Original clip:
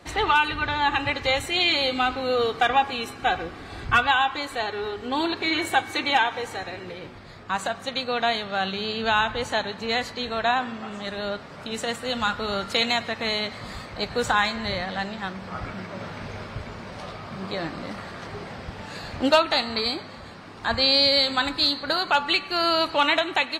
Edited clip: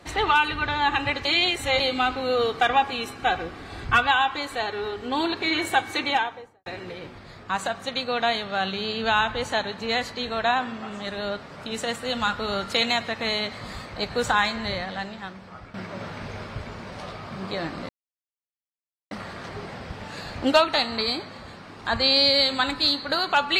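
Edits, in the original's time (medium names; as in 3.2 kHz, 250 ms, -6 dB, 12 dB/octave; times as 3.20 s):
1.25–1.80 s: reverse
5.99–6.66 s: studio fade out
14.58–15.74 s: fade out, to -13 dB
17.89 s: insert silence 1.22 s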